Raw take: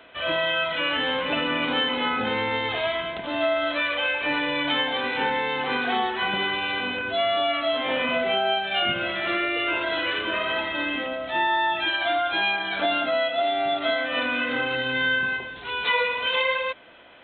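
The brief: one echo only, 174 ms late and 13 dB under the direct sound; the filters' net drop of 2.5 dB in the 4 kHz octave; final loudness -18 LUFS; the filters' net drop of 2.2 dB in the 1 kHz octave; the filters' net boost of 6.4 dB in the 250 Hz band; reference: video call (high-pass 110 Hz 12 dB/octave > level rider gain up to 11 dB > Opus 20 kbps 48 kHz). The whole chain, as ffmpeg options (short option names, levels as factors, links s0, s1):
-af "highpass=110,equalizer=f=250:t=o:g=8,equalizer=f=1000:t=o:g=-3.5,equalizer=f=4000:t=o:g=-3.5,aecho=1:1:174:0.224,dynaudnorm=m=3.55,volume=1.68" -ar 48000 -c:a libopus -b:a 20k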